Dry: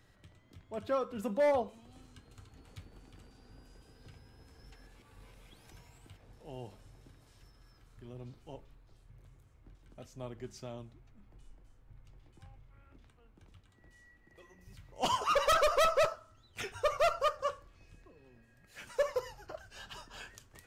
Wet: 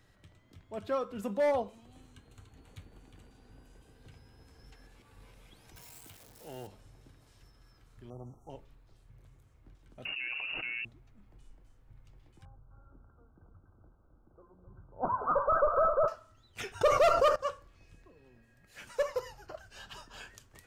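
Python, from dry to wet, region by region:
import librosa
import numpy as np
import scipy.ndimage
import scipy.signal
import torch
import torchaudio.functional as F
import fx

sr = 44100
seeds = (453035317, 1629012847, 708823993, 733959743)

y = fx.chain(x, sr, fx.peak_eq(hz=5100.0, db=-10.0, octaves=0.21),
    fx.notch(hz=1300.0, q=22.0), at=(1.86, 4.12))
y = fx.chain(y, sr, fx.crossing_spikes(level_db=-47.5),
    fx.low_shelf(hz=120.0, db=-11.5),
    fx.leveller(passes=1), at=(5.76, 6.67))
y = fx.chain(y, sr, fx.brickwall_bandstop(low_hz=1400.0, high_hz=5500.0),
    fx.peak_eq(hz=770.0, db=9.0, octaves=0.56), at=(8.1, 8.5))
y = fx.chain(y, sr, fx.freq_invert(carrier_hz=2800),
    fx.comb(ms=6.4, depth=0.42),
    fx.env_flatten(amount_pct=100), at=(10.05, 10.85))
y = fx.chain(y, sr, fx.brickwall_lowpass(high_hz=1600.0),
    fx.echo_multitap(ms=(208, 261), db=(-15.5, -7.0)), at=(12.45, 16.08))
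y = fx.chain(y, sr, fx.peak_eq(hz=330.0, db=11.5, octaves=1.3),
    fx.env_flatten(amount_pct=70), at=(16.81, 17.36))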